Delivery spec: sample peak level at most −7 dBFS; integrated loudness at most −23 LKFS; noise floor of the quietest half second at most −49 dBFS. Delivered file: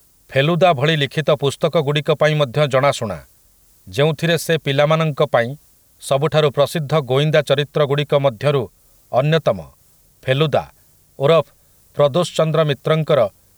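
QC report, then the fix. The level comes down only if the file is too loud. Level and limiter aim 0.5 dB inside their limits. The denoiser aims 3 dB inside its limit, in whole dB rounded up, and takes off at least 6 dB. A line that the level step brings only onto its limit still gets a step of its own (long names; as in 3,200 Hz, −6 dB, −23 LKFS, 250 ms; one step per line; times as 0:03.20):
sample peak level −3.0 dBFS: out of spec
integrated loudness −17.5 LKFS: out of spec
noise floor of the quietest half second −53 dBFS: in spec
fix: level −6 dB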